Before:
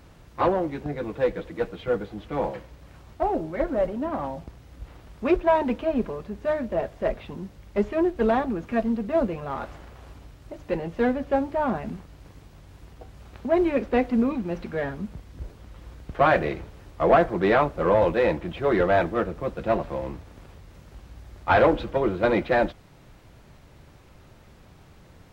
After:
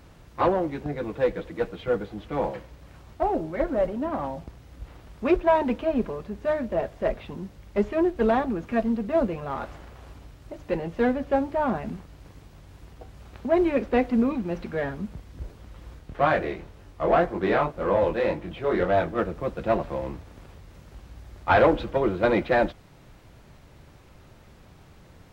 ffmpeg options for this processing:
ffmpeg -i in.wav -filter_complex "[0:a]asplit=3[link_01][link_02][link_03];[link_01]afade=type=out:start_time=15.98:duration=0.02[link_04];[link_02]flanger=delay=20:depth=6.2:speed=1.9,afade=type=in:start_time=15.98:duration=0.02,afade=type=out:start_time=19.17:duration=0.02[link_05];[link_03]afade=type=in:start_time=19.17:duration=0.02[link_06];[link_04][link_05][link_06]amix=inputs=3:normalize=0" out.wav

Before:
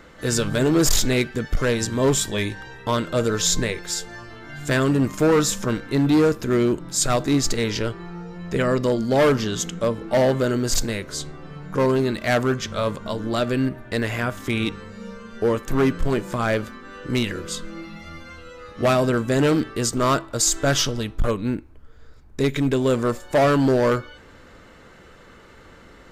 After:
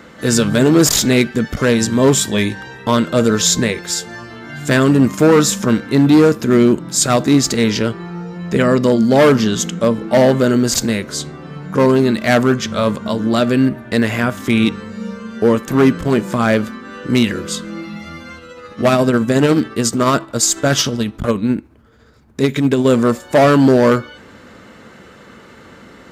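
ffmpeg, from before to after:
ffmpeg -i in.wav -filter_complex "[0:a]asettb=1/sr,asplit=3[link_01][link_02][link_03];[link_01]atrim=end=18.374[link_04];[link_02]atrim=start=18.37:end=22.85,asetpts=PTS-STARTPTS,afade=type=in:duration=0.004:curve=qsin,afade=type=out:start_time=4.476:duration=0.004:curve=qsin,tremolo=f=14:d=0.37[link_05];[link_03]atrim=start=22.846[link_06];[link_04][link_05]acrossfade=duration=0.004:curve1=hsin:curve2=qsin[link_07];[link_07][link_06]acrossfade=duration=0.004:curve1=qsin:curve2=hsin,highpass=88,equalizer=frequency=220:width=3.3:gain=6.5,volume=6.5dB" out.wav

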